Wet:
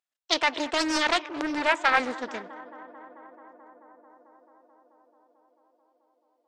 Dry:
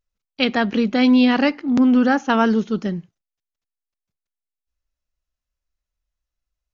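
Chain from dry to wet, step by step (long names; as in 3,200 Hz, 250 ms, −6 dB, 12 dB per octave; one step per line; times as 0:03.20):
gliding playback speed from 132% → 76%
high-pass filter 780 Hz 12 dB per octave
high-shelf EQ 4,800 Hz −5.5 dB
tape delay 219 ms, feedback 90%, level −18 dB, low-pass 2,300 Hz
highs frequency-modulated by the lows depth 0.44 ms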